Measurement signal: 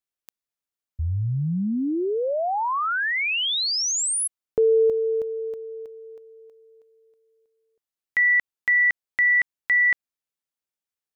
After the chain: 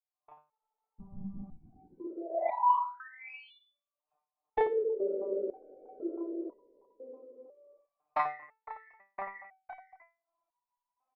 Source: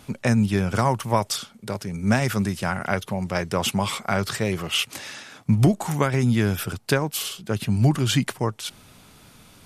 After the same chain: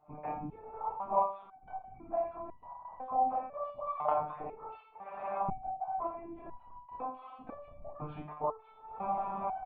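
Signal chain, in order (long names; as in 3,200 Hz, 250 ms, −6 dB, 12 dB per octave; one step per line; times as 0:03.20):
adaptive Wiener filter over 9 samples
camcorder AGC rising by 67 dB per second, up to +31 dB
bad sample-rate conversion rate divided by 6×, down filtered, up zero stuff
formant resonators in series a
loudspeakers that aren't time-aligned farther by 10 metres −1 dB, 30 metres −8 dB
in parallel at −11 dB: sine wavefolder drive 8 dB, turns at −1.5 dBFS
on the sum: random phases in short frames
step-sequenced resonator 2 Hz 150–990 Hz
level +4.5 dB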